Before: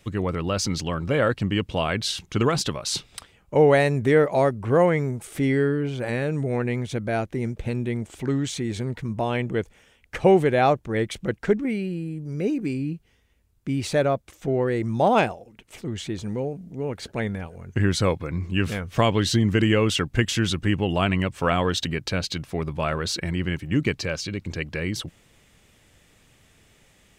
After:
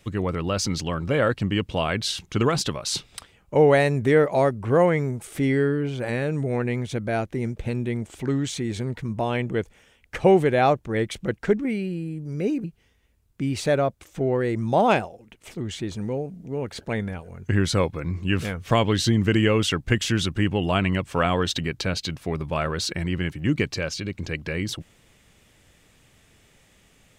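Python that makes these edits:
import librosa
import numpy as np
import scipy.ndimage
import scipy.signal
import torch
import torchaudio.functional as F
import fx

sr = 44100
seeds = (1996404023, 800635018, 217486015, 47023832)

y = fx.edit(x, sr, fx.cut(start_s=12.64, length_s=0.27), tone=tone)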